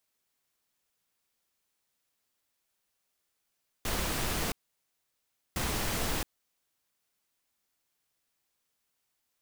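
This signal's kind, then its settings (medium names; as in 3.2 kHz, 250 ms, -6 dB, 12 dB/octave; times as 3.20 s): noise bursts pink, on 0.67 s, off 1.04 s, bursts 2, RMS -31.5 dBFS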